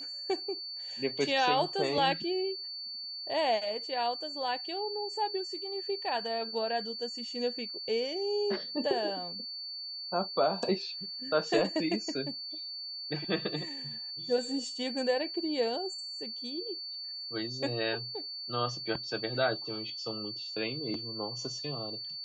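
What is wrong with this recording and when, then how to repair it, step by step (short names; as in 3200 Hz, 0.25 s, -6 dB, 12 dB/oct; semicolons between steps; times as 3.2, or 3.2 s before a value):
tone 4500 Hz -38 dBFS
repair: notch 4500 Hz, Q 30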